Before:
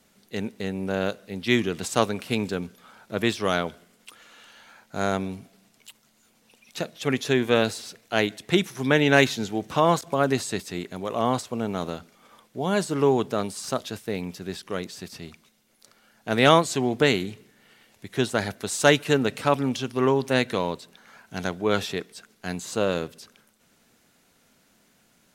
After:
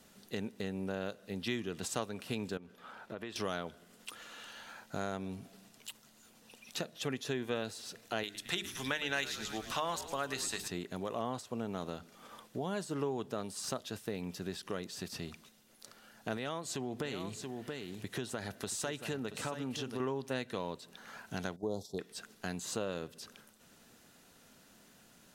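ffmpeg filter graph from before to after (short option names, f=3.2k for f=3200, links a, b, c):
-filter_complex "[0:a]asettb=1/sr,asplit=3[a][b][c];[a]atrim=end=2.574[d];[b]atrim=start=2.57:end=3.36,asetpts=PTS-STARTPTS,afade=t=in:d=0.004:c=qsin,afade=t=out:st=0.786:d=0.004:c=qsin,bass=f=250:g=-6,treble=f=4k:g=-11,acompressor=threshold=-40dB:ratio=4:attack=3.2:release=140:knee=1:detection=peak[e];[c]atrim=start=3.356[f];[d][e]acrossfade=d=0.004:c1=hsin:c2=qsin[g];[g][f]acrossfade=d=0.004:c1=qsin:c2=hsin,asettb=1/sr,asplit=3[h][i][j];[h]atrim=end=8.234[k];[i]atrim=start=8.23:end=10.68,asetpts=PTS-STARTPTS,afade=t=in:d=0.004:c=qsin,afade=t=out:st=2.446:d=0.004:c=qsin,tiltshelf=f=860:g=-7.5,bandreject=f=50:t=h:w=6,bandreject=f=100:t=h:w=6,bandreject=f=150:t=h:w=6,bandreject=f=200:t=h:w=6,bandreject=f=250:t=h:w=6,bandreject=f=300:t=h:w=6,bandreject=f=350:t=h:w=6,bandreject=f=400:t=h:w=6,bandreject=f=450:t=h:w=6,asplit=6[l][m][n][o][p][q];[m]adelay=110,afreqshift=-92,volume=-15dB[r];[n]adelay=220,afreqshift=-184,volume=-20.2dB[s];[o]adelay=330,afreqshift=-276,volume=-25.4dB[t];[p]adelay=440,afreqshift=-368,volume=-30.6dB[u];[q]adelay=550,afreqshift=-460,volume=-35.8dB[v];[l][r][s][t][u][v]amix=inputs=6:normalize=0,atrim=end_sample=108045[w];[j]atrim=start=10.676[x];[k][w]acrossfade=d=0.004:c1=hsin:c2=qsin[y];[y][x]acrossfade=d=0.004:c1=qsin:c2=hsin,asettb=1/sr,asplit=3[z][aa][ab];[z]atrim=end=16.374[ac];[aa]atrim=start=16.37:end=20,asetpts=PTS-STARTPTS,afade=t=in:d=0.004:c=qsin,afade=t=out:st=3.626:d=0.004:c=qsin,acompressor=threshold=-30dB:ratio=2:attack=3.2:release=140:knee=1:detection=peak,aecho=1:1:679:0.299,atrim=end_sample=160083[ad];[ab]atrim=start=19.996[ae];[ac][ad]acrossfade=d=0.004:c1=hsin:c2=qsin[af];[af][ae]acrossfade=d=0.004:c1=qsin:c2=hsin,asettb=1/sr,asplit=3[ag][ah][ai];[ag]atrim=end=21.564[aj];[ah]atrim=start=21.56:end=21.99,asetpts=PTS-STARTPTS,afade=t=in:d=0.004:c=qsin,afade=t=out:st=0.426:d=0.004:c=qsin,agate=range=-9dB:threshold=-32dB:ratio=16:release=100:detection=peak,asuperstop=centerf=2000:order=8:qfactor=0.59[ak];[ai]atrim=start=21.986[al];[aj][ak]acrossfade=d=0.004:c1=hsin:c2=qsin[am];[am][al]acrossfade=d=0.004:c1=qsin:c2=hsin,acompressor=threshold=-39dB:ratio=3,bandreject=f=2.2k:w=12,volume=1dB"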